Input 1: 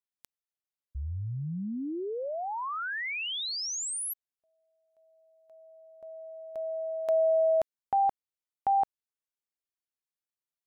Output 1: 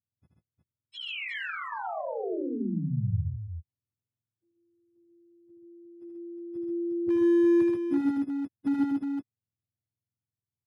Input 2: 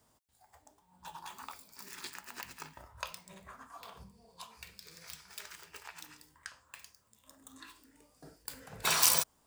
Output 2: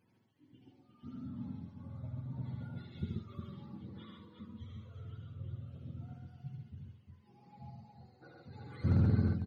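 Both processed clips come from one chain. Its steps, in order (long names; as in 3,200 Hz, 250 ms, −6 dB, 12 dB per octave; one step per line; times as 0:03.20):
frequency axis turned over on the octave scale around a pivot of 470 Hz
wave folding −21.5 dBFS
multi-tap delay 77/132/150/359 ms −4/−3/−14/−6 dB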